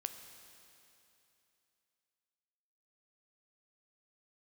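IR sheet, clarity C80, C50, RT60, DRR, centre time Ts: 9.0 dB, 8.0 dB, 2.9 s, 7.0 dB, 37 ms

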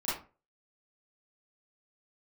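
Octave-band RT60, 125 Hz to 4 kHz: 0.40, 0.40, 0.35, 0.35, 0.30, 0.20 seconds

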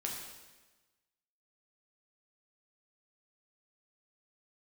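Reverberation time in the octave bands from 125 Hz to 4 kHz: 1.3, 1.3, 1.2, 1.2, 1.2, 1.1 seconds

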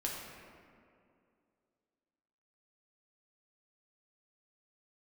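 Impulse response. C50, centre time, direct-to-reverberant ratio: 0.5 dB, 99 ms, −3.0 dB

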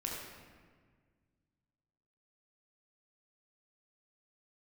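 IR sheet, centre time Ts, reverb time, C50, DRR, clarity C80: 82 ms, 1.7 s, 0.0 dB, −2.5 dB, 2.0 dB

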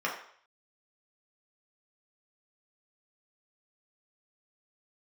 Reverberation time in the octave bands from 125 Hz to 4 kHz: 0.40, 0.45, 0.55, 0.60, 0.60, 0.55 seconds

